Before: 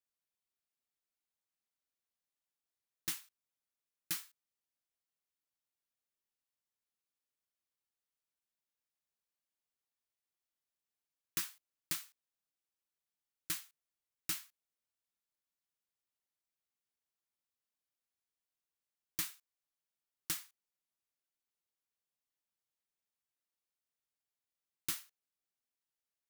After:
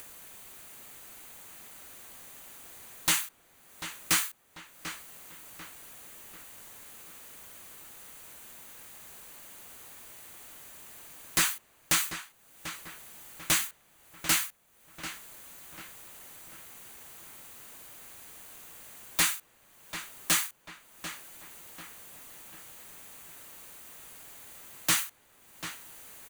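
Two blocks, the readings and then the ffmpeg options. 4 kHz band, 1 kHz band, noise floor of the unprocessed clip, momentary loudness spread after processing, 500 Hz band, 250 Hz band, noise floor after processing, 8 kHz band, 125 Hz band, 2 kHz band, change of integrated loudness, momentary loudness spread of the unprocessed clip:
+15.0 dB, +20.0 dB, under -85 dBFS, 19 LU, +19.5 dB, +15.0 dB, -63 dBFS, +15.0 dB, +14.0 dB, +18.5 dB, +10.0 dB, 17 LU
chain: -filter_complex "[0:a]acrossover=split=9000[s0][s1];[s1]acompressor=threshold=0.00251:ratio=4:attack=1:release=60[s2];[s0][s2]amix=inputs=2:normalize=0,bandreject=f=5300:w=5.4,acompressor=mode=upward:threshold=0.00158:ratio=2.5,equalizer=f=4100:t=o:w=1:g=-5,aeval=exprs='0.0562*sin(PI/2*5.62*val(0)/0.0562)':c=same,asplit=2[s3][s4];[s4]adelay=742,lowpass=f=3300:p=1,volume=0.335,asplit=2[s5][s6];[s6]adelay=742,lowpass=f=3300:p=1,volume=0.46,asplit=2[s7][s8];[s8]adelay=742,lowpass=f=3300:p=1,volume=0.46,asplit=2[s9][s10];[s10]adelay=742,lowpass=f=3300:p=1,volume=0.46,asplit=2[s11][s12];[s12]adelay=742,lowpass=f=3300:p=1,volume=0.46[s13];[s3][s5][s7][s9][s11][s13]amix=inputs=6:normalize=0,volume=2"

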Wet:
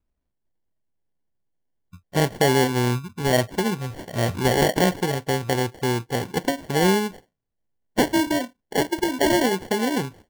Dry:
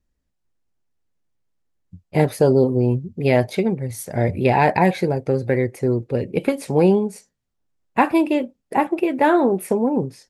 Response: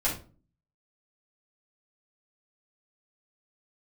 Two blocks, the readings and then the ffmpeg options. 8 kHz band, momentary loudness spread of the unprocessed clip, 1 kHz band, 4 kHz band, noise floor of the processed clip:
+8.0 dB, 7 LU, -3.5 dB, +10.5 dB, -78 dBFS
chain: -af "acrusher=samples=35:mix=1:aa=0.000001,volume=0.668"

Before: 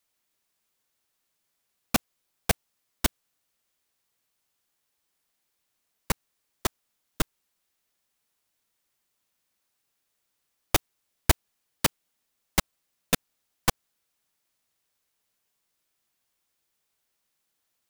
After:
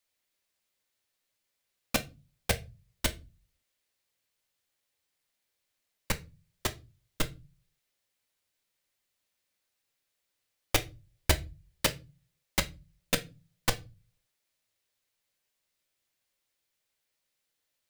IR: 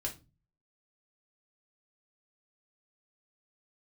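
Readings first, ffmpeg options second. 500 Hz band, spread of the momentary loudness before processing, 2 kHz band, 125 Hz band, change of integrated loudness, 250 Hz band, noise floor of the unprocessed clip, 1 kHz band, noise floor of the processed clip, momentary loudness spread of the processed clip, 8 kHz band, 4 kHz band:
-2.0 dB, 6 LU, -2.0 dB, -2.5 dB, -3.5 dB, -5.0 dB, -78 dBFS, -5.5 dB, -82 dBFS, 17 LU, -3.5 dB, -1.5 dB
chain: -filter_complex "[0:a]asplit=2[s0][s1];[s1]equalizer=f=125:t=o:w=1:g=7,equalizer=f=250:t=o:w=1:g=-7,equalizer=f=500:t=o:w=1:g=10,equalizer=f=1000:t=o:w=1:g=-6,equalizer=f=2000:t=o:w=1:g=9,equalizer=f=4000:t=o:w=1:g=7,equalizer=f=8000:t=o:w=1:g=3[s2];[1:a]atrim=start_sample=2205[s3];[s2][s3]afir=irnorm=-1:irlink=0,volume=0.473[s4];[s0][s4]amix=inputs=2:normalize=0,volume=0.398"

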